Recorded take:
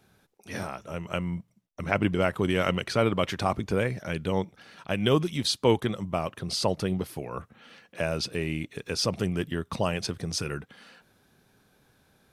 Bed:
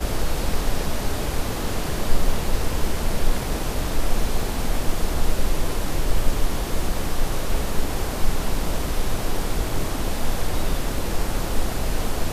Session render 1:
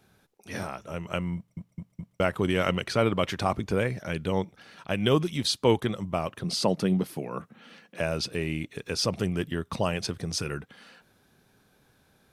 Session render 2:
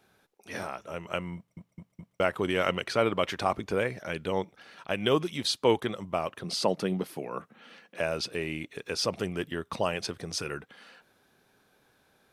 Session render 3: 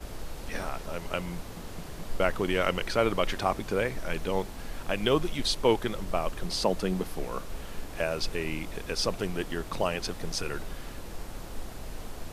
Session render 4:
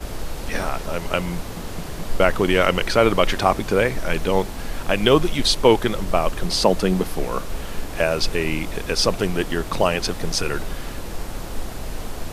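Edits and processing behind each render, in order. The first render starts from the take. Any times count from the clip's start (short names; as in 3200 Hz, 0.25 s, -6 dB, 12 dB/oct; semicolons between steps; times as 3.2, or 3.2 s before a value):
1.36 stutter in place 0.21 s, 4 plays; 6.44–8 resonant high-pass 180 Hz, resonance Q 1.8
tone controls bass -9 dB, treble -3 dB
add bed -15.5 dB
gain +9.5 dB; limiter -1 dBFS, peak gain reduction 1.5 dB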